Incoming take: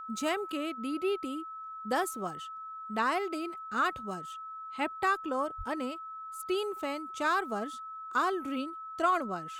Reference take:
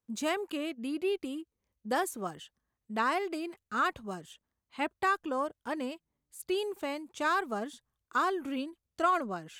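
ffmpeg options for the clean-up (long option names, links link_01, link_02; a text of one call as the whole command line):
ffmpeg -i in.wav -filter_complex "[0:a]bandreject=frequency=1300:width=30,asplit=3[link_01][link_02][link_03];[link_01]afade=type=out:start_time=5.57:duration=0.02[link_04];[link_02]highpass=frequency=140:width=0.5412,highpass=frequency=140:width=1.3066,afade=type=in:start_time=5.57:duration=0.02,afade=type=out:start_time=5.69:duration=0.02[link_05];[link_03]afade=type=in:start_time=5.69:duration=0.02[link_06];[link_04][link_05][link_06]amix=inputs=3:normalize=0" out.wav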